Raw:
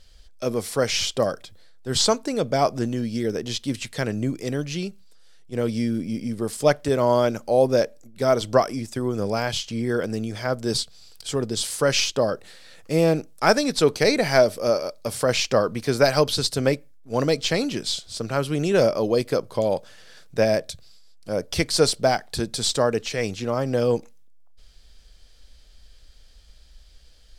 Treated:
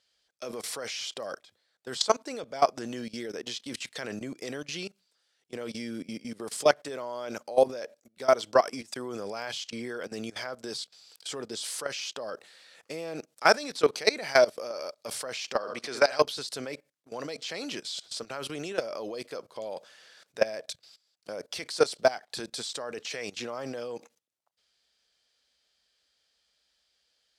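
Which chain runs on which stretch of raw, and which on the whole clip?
0:15.56–0:16.21: low-pass filter 8,700 Hz + low-shelf EQ 200 Hz −9 dB + flutter between parallel walls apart 11.8 metres, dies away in 0.36 s
whole clip: meter weighting curve A; output level in coarse steps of 19 dB; level +2 dB

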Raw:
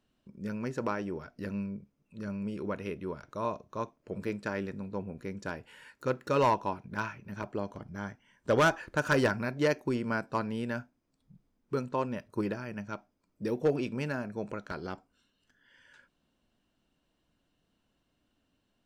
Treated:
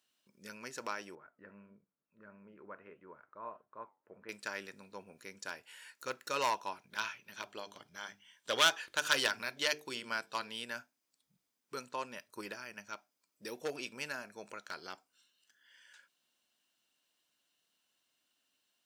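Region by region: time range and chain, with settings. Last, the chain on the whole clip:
0:01.15–0:04.29: low-pass filter 1,700 Hz 24 dB per octave + flanger 1.6 Hz, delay 5.9 ms, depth 5.4 ms, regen −80%
0:06.90–0:10.64: parametric band 3,400 Hz +9.5 dB 0.55 octaves + mains-hum notches 50/100/150/200/250/300/350/400/450 Hz
whole clip: high-pass filter 1,400 Hz 6 dB per octave; high-shelf EQ 3,300 Hz +10.5 dB; level −2 dB

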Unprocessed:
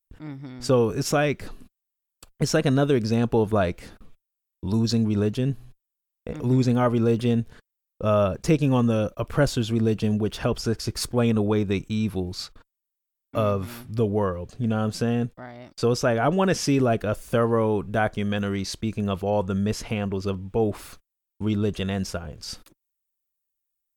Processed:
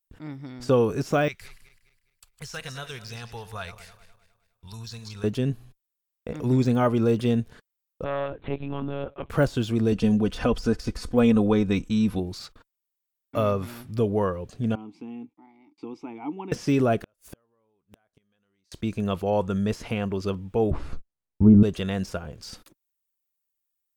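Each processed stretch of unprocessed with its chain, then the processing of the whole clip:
0:01.28–0:05.24: feedback delay that plays each chunk backwards 103 ms, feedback 62%, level −13 dB + guitar amp tone stack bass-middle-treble 10-0-10 + notch filter 610 Hz, Q 7.6
0:08.04–0:09.30: downward compressor 1.5 to 1, threshold −28 dBFS + tube saturation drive 19 dB, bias 0.6 + one-pitch LPC vocoder at 8 kHz 140 Hz
0:09.92–0:12.19: low-pass filter 11,000 Hz + low-shelf EQ 95 Hz +9 dB + comb filter 4 ms, depth 55%
0:14.75–0:16.52: formant filter u + parametric band 130 Hz −9.5 dB 0.25 octaves
0:17.03–0:18.72: spectral tilt +1.5 dB per octave + downward compressor 2.5 to 1, threshold −27 dBFS + gate with flip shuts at −25 dBFS, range −41 dB
0:20.71–0:21.63: spectral tilt −4.5 dB per octave + treble cut that deepens with the level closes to 990 Hz, closed at −10.5 dBFS + double-tracking delay 14 ms −6 dB
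whole clip: de-essing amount 90%; low-shelf EQ 75 Hz −6 dB

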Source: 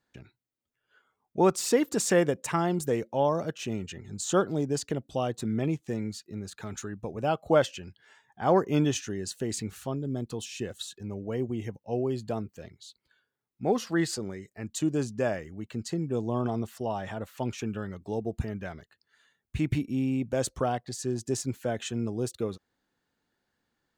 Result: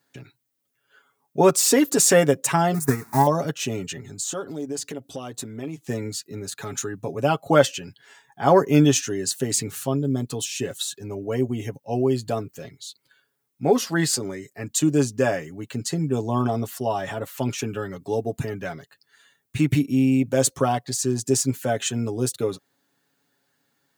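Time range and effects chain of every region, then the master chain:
0:02.74–0:03.27: converter with a step at zero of −35 dBFS + transient designer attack +11 dB, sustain −12 dB + phaser with its sweep stopped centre 1,300 Hz, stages 4
0:04.09–0:05.82: parametric band 140 Hz −14 dB 0.23 octaves + downward compressor 2.5 to 1, threshold −40 dBFS
whole clip: high-pass filter 110 Hz; high-shelf EQ 7,400 Hz +11 dB; comb filter 7.2 ms, depth 66%; level +5.5 dB

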